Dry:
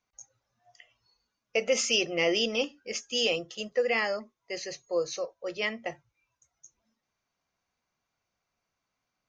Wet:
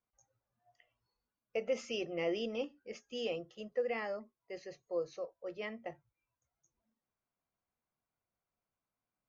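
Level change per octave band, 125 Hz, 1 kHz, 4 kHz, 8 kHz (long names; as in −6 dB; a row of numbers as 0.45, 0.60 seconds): −6.5 dB, −9.0 dB, −17.0 dB, below −20 dB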